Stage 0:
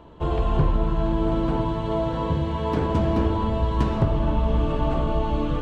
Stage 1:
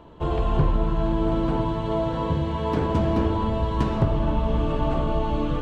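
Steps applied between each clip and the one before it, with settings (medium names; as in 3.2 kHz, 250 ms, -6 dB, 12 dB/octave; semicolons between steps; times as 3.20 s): peaking EQ 62 Hz -3.5 dB 0.34 oct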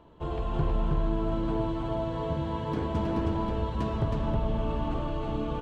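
delay 318 ms -3 dB; trim -8 dB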